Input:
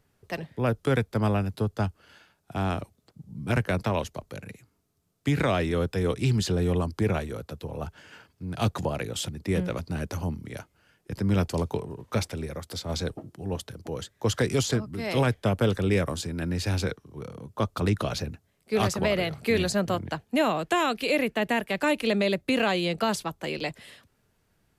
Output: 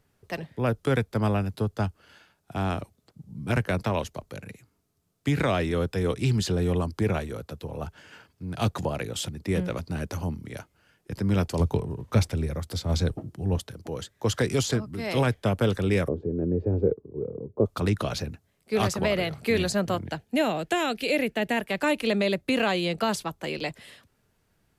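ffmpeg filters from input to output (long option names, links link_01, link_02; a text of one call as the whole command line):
ffmpeg -i in.wav -filter_complex "[0:a]asettb=1/sr,asplit=3[link_01][link_02][link_03];[link_01]atrim=end=11.604[link_04];[link_02]atrim=start=11.6:end=13.59,asetpts=PTS-STARTPTS,afade=type=in:duration=0.004:curve=qsin,afade=type=out:start_time=1.986:duration=0.004:curve=qsin,lowshelf=frequency=170:gain=11[link_05];[link_03]atrim=start=13.586[link_06];[link_04][link_05]acrossfade=duration=0.004:curve1=hsin:curve2=qsin[link_07];[link_07][link_06]acrossfade=duration=0.004:curve1=qsin:curve2=hsin,asettb=1/sr,asplit=3[link_08][link_09][link_10];[link_08]atrim=end=16.084[link_11];[link_09]atrim=start=16.08:end=17.66,asetpts=PTS-STARTPTS,afade=type=in:duration=0.004:curve=qsin,afade=type=out:start_time=1.576:duration=0.004:curve=qsin,lowpass=frequency=430:width_type=q:width=4.1[link_12];[link_10]atrim=start=17.656[link_13];[link_11][link_12]acrossfade=duration=0.004:curve1=hsin:curve2=qsin[link_14];[link_14][link_13]acrossfade=duration=0.004:curve1=qsin:curve2=hsin,asettb=1/sr,asplit=3[link_15][link_16][link_17];[link_15]atrim=end=20.044[link_18];[link_16]atrim=start=20.04:end=21.57,asetpts=PTS-STARTPTS,afade=type=in:duration=0.004:curve=qsin,afade=type=out:start_time=1.526:duration=0.004:curve=qsin,equalizer=frequency=1100:width_type=o:width=0.42:gain=-8.5[link_19];[link_17]atrim=start=21.566[link_20];[link_18][link_19]acrossfade=duration=0.004:curve1=hsin:curve2=qsin[link_21];[link_21][link_20]acrossfade=duration=0.004:curve1=qsin:curve2=hsin" out.wav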